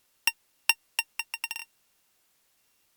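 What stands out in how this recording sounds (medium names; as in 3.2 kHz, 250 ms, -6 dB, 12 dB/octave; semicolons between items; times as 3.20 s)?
a buzz of ramps at a fixed pitch in blocks of 16 samples; random-step tremolo, depth 90%; a quantiser's noise floor 12-bit, dither triangular; Opus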